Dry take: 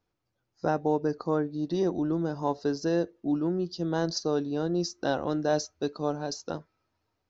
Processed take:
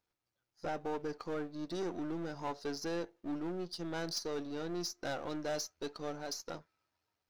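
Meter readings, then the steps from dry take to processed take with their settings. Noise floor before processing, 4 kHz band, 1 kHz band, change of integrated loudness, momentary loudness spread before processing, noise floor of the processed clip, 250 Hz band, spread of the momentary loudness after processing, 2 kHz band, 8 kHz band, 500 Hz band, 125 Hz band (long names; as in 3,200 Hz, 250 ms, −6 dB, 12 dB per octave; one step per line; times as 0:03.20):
−80 dBFS, −4.0 dB, −9.5 dB, −10.5 dB, 6 LU, below −85 dBFS, −11.5 dB, 4 LU, −5.5 dB, can't be measured, −11.0 dB, −13.5 dB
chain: gain on one half-wave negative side −7 dB
tilt shelving filter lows −4.5 dB, about 690 Hz
notch filter 1,100 Hz, Q 25
soft clipping −27 dBFS, distortion −14 dB
level −3.5 dB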